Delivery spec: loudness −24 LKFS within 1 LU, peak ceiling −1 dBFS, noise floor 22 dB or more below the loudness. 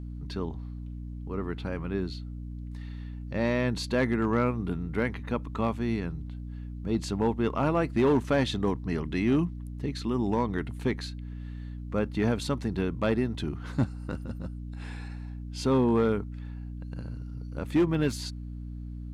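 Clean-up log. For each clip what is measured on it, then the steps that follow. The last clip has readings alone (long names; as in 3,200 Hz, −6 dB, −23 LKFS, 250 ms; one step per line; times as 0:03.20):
share of clipped samples 0.5%; peaks flattened at −17.5 dBFS; mains hum 60 Hz; hum harmonics up to 300 Hz; level of the hum −36 dBFS; integrated loudness −29.5 LKFS; sample peak −17.5 dBFS; target loudness −24.0 LKFS
→ clipped peaks rebuilt −17.5 dBFS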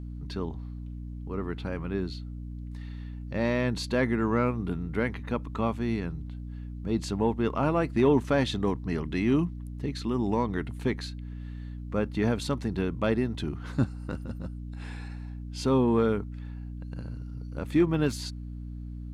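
share of clipped samples 0.0%; mains hum 60 Hz; hum harmonics up to 300 Hz; level of the hum −36 dBFS
→ hum removal 60 Hz, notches 5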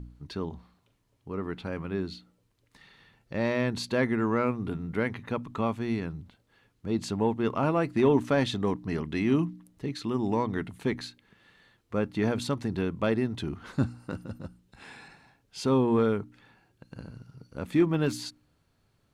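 mains hum none found; integrated loudness −29.5 LKFS; sample peak −12.0 dBFS; target loudness −24.0 LKFS
→ level +5.5 dB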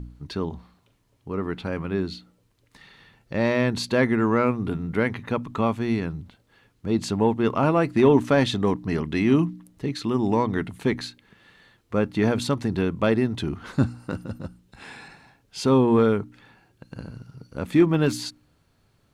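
integrated loudness −24.0 LKFS; sample peak −6.5 dBFS; background noise floor −65 dBFS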